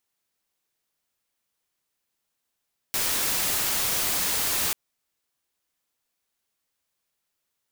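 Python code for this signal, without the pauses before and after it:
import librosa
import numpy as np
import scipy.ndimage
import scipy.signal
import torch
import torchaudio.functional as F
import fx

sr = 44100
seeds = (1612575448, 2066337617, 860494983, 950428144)

y = fx.noise_colour(sr, seeds[0], length_s=1.79, colour='white', level_db=-25.5)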